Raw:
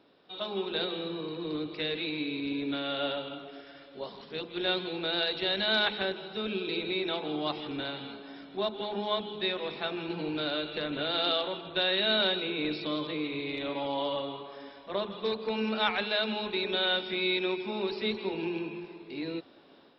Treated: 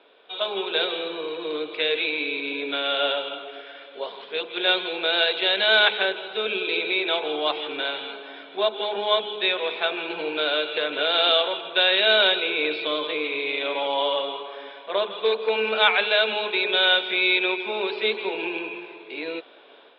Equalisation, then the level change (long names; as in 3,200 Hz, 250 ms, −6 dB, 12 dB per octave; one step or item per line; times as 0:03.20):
high-frequency loss of the air 66 metres
loudspeaker in its box 440–3,900 Hz, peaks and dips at 450 Hz +8 dB, 650 Hz +5 dB, 980 Hz +4 dB, 1,500 Hz +6 dB, 2,400 Hz +9 dB, 3,400 Hz +10 dB
+4.5 dB